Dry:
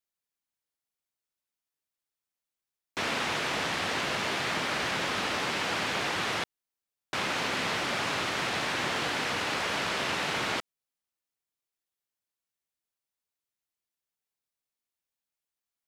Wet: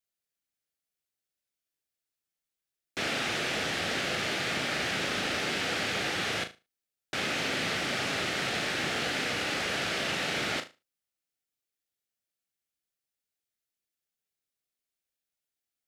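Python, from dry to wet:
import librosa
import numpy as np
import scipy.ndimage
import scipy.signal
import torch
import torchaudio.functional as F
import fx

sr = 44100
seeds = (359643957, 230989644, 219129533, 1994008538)

y = fx.peak_eq(x, sr, hz=1000.0, db=-12.5, octaves=0.38)
y = fx.room_flutter(y, sr, wall_m=6.4, rt60_s=0.26)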